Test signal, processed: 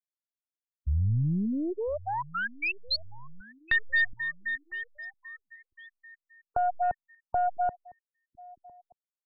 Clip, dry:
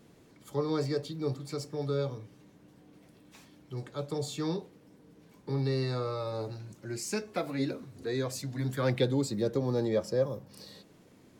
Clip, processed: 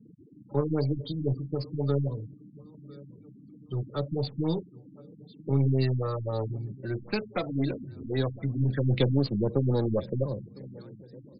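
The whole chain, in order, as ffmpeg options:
-filter_complex "[0:a]acrossover=split=160|3000[s0][s1][s2];[s1]acompressor=threshold=0.00447:ratio=1.5[s3];[s0][s3][s2]amix=inputs=3:normalize=0,afftfilt=real='re*gte(hypot(re,im),0.00631)':imag='im*gte(hypot(re,im),0.00631)':win_size=1024:overlap=0.75,asplit=2[s4][s5];[s5]aecho=0:1:1005|2010|3015:0.0841|0.0412|0.0202[s6];[s4][s6]amix=inputs=2:normalize=0,aeval=exprs='0.15*(cos(1*acos(clip(val(0)/0.15,-1,1)))-cos(1*PI/2))+0.0119*(cos(6*acos(clip(val(0)/0.15,-1,1)))-cos(6*PI/2))':c=same,afftfilt=real='re*lt(b*sr/1024,290*pow(5200/290,0.5+0.5*sin(2*PI*3.8*pts/sr)))':imag='im*lt(b*sr/1024,290*pow(5200/290,0.5+0.5*sin(2*PI*3.8*pts/sr)))':win_size=1024:overlap=0.75,volume=2.66"

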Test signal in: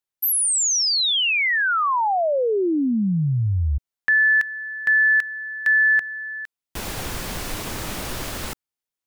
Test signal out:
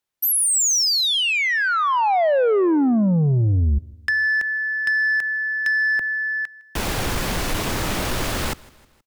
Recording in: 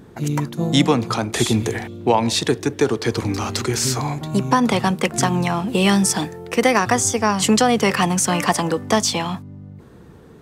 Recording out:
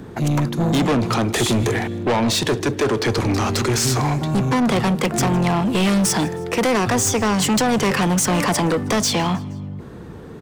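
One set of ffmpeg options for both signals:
-filter_complex "[0:a]highshelf=f=5500:g=-5.5,acrossover=split=100|700|6200[s0][s1][s2][s3];[s2]acompressor=threshold=0.0316:ratio=8:attack=96:release=35:knee=6:detection=rms[s4];[s0][s1][s4][s3]amix=inputs=4:normalize=0,asoftclip=type=tanh:threshold=0.0708,aecho=1:1:158|316|474:0.0668|0.0354|0.0188,volume=2.51"

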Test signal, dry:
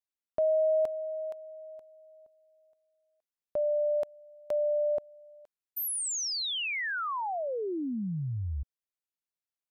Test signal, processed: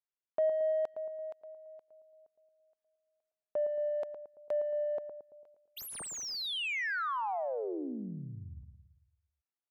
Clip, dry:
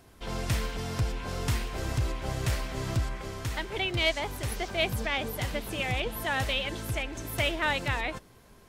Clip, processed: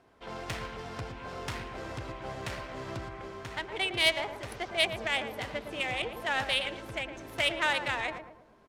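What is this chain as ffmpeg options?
-filter_complex "[0:a]aemphasis=mode=production:type=riaa,adynamicsmooth=sensitivity=1:basefreq=1600,asplit=2[s0][s1];[s1]adelay=112,lowpass=f=1000:p=1,volume=0.473,asplit=2[s2][s3];[s3]adelay=112,lowpass=f=1000:p=1,volume=0.53,asplit=2[s4][s5];[s5]adelay=112,lowpass=f=1000:p=1,volume=0.53,asplit=2[s6][s7];[s7]adelay=112,lowpass=f=1000:p=1,volume=0.53,asplit=2[s8][s9];[s9]adelay=112,lowpass=f=1000:p=1,volume=0.53,asplit=2[s10][s11];[s11]adelay=112,lowpass=f=1000:p=1,volume=0.53,asplit=2[s12][s13];[s13]adelay=112,lowpass=f=1000:p=1,volume=0.53[s14];[s0][s2][s4][s6][s8][s10][s12][s14]amix=inputs=8:normalize=0"

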